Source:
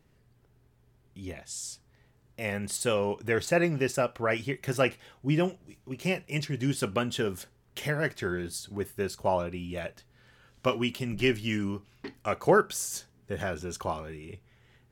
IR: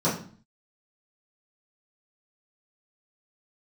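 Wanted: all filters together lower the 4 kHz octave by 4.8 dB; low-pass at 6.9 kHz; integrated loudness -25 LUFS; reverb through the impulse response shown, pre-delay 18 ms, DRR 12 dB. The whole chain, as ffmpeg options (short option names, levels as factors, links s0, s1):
-filter_complex "[0:a]lowpass=6900,equalizer=f=4000:t=o:g=-7,asplit=2[s0][s1];[1:a]atrim=start_sample=2205,adelay=18[s2];[s1][s2]afir=irnorm=-1:irlink=0,volume=0.0531[s3];[s0][s3]amix=inputs=2:normalize=0,volume=1.68"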